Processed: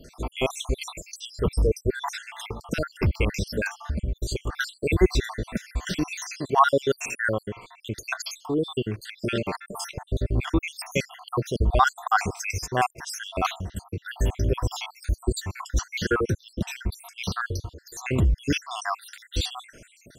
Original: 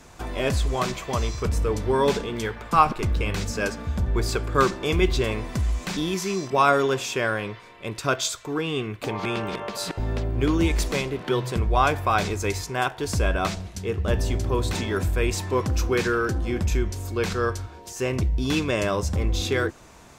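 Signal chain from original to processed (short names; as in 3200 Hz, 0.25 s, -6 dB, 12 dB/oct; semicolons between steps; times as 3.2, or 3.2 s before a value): random spectral dropouts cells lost 71%; 3.59–4.47 compressor, threshold -27 dBFS, peak gain reduction 6 dB; gain +3.5 dB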